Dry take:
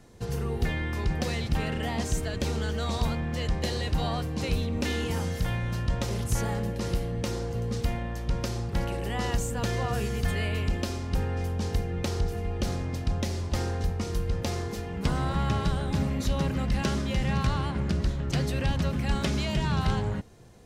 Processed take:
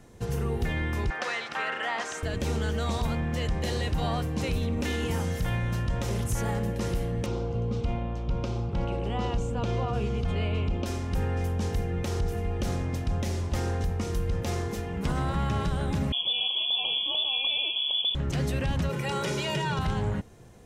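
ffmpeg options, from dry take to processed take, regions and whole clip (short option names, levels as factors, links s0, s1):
-filter_complex "[0:a]asettb=1/sr,asplit=3[s0][s1][s2];[s0]atrim=end=1.104[s3];[s1]atrim=start=1.1:end=2.23,asetpts=PTS-STARTPTS,afade=t=in:d=0.004:c=qsin,afade=t=out:st=1.126:d=0.004:c=qsin,highpass=600,lowpass=6200,equalizer=f=1400:t=o:w=1:g=10[s4];[s2]atrim=start=2.226[s5];[s3][s4]acrossfade=d=0.004:c1=hsin:c2=qsin[s6];[s6][s5]acrossfade=d=0.004:c1=qsin:c2=hsin,asettb=1/sr,asplit=3[s7][s8][s9];[s7]atrim=end=7.264[s10];[s8]atrim=start=7.26:end=10.86,asetpts=PTS-STARTPTS,afade=t=in:d=0.004:c=qsin,afade=t=out:st=3.596:d=0.004:c=qsin,lowpass=3700,equalizer=f=1800:w=4.4:g=-15[s11];[s9]atrim=start=10.856[s12];[s10][s11]acrossfade=d=0.004:c1=hsin:c2=qsin[s13];[s13][s12]acrossfade=d=0.004:c1=qsin:c2=hsin,asettb=1/sr,asplit=3[s14][s15][s16];[s14]atrim=end=16.124[s17];[s15]atrim=start=16.12:end=18.15,asetpts=PTS-STARTPTS,afade=t=in:d=0.004:c=qsin,afade=t=out:st=2.026:d=0.004:c=qsin,asuperstop=centerf=1700:order=12:qfactor=1.3,aemphasis=mode=production:type=50fm,lowpass=f=3000:t=q:w=0.5098,lowpass=f=3000:t=q:w=0.6013,lowpass=f=3000:t=q:w=0.9,lowpass=f=3000:t=q:w=2.563,afreqshift=-3500[s18];[s16]atrim=start=18.146[s19];[s17][s18]acrossfade=d=0.004:c1=hsin:c2=qsin[s20];[s20][s19]acrossfade=d=0.004:c1=qsin:c2=hsin,asettb=1/sr,asplit=3[s21][s22][s23];[s21]atrim=end=18.894[s24];[s22]atrim=start=18.89:end=19.79,asetpts=PTS-STARTPTS,afade=t=in:d=0.004:c=qsin,afade=t=out:st=0.896:d=0.004:c=qsin,highpass=f=140:w=0.5412,highpass=f=140:w=1.3066,aecho=1:1:2.1:0.91,atrim=end_sample=39690[s25];[s23]atrim=start=19.786[s26];[s24][s25]acrossfade=d=0.004:c1=hsin:c2=qsin[s27];[s27][s26]acrossfade=d=0.004:c1=qsin:c2=hsin,equalizer=f=4500:w=2.7:g=-5,alimiter=limit=0.0891:level=0:latency=1:release=44,volume=1.19"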